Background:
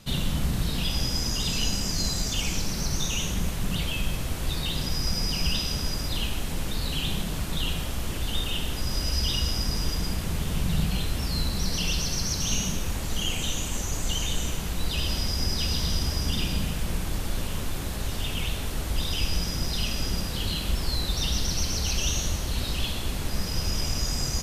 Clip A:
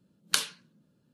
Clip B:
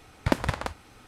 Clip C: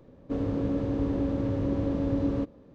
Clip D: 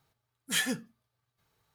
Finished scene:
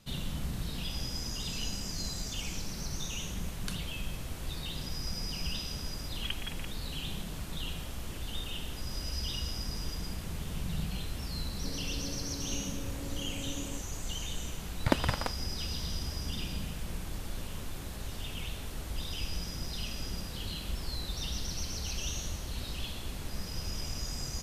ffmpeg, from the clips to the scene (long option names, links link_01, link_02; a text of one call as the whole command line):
ffmpeg -i bed.wav -i cue0.wav -i cue1.wav -i cue2.wav -filter_complex "[2:a]asplit=2[link_01][link_02];[0:a]volume=-9.5dB[link_03];[link_01]lowpass=frequency=2900:width_type=q:width=0.5098,lowpass=frequency=2900:width_type=q:width=0.6013,lowpass=frequency=2900:width_type=q:width=0.9,lowpass=frequency=2900:width_type=q:width=2.563,afreqshift=-3400[link_04];[1:a]atrim=end=1.13,asetpts=PTS-STARTPTS,volume=-16.5dB,afade=type=in:duration=0.004:curve=hsin,afade=type=out:start_time=1.126:duration=0.004:curve=hsin,adelay=3340[link_05];[link_04]atrim=end=1.07,asetpts=PTS-STARTPTS,volume=-15dB,afade=type=in:duration=0.004:curve=hsin,afade=type=out:start_time=1.066:duration=0.004:curve=hsin,adelay=5980[link_06];[3:a]atrim=end=2.74,asetpts=PTS-STARTPTS,volume=-15dB,afade=type=in:duration=0.004:curve=hsin,afade=type=out:start_time=2.736:duration=0.004:curve=hsin,adelay=11340[link_07];[link_02]atrim=end=1.07,asetpts=PTS-STARTPTS,volume=-3dB,afade=type=in:duration=0.004:curve=hsin,afade=type=out:start_time=1.066:duration=0.004:curve=hsin,adelay=643860S[link_08];[link_03][link_05][link_06][link_07][link_08]amix=inputs=5:normalize=0" out.wav